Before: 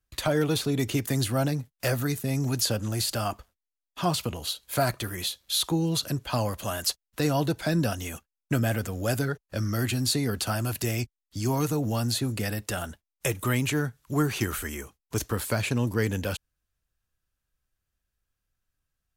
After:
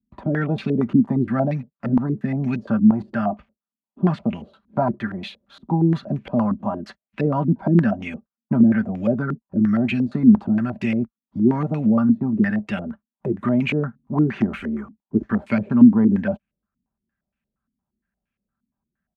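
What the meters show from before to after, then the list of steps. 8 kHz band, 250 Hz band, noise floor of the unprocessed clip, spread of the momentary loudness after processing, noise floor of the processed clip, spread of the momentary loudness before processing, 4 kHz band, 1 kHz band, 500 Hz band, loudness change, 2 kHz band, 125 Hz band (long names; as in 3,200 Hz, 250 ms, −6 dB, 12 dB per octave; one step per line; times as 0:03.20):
below −25 dB, +12.5 dB, below −85 dBFS, 13 LU, below −85 dBFS, 8 LU, below −10 dB, +3.5 dB, +3.5 dB, +7.5 dB, +1.0 dB, +3.5 dB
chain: high-pass filter 51 Hz
parametric band 570 Hz −14 dB 0.36 octaves
comb filter 5.1 ms, depth 36%
hollow resonant body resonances 220/580 Hz, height 17 dB, ringing for 45 ms
low-pass on a step sequencer 8.6 Hz 260–2,400 Hz
level −3 dB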